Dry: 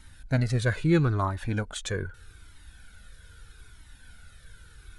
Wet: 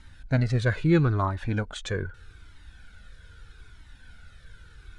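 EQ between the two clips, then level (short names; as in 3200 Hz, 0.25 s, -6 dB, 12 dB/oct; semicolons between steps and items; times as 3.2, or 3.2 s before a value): air absorption 81 m; +1.5 dB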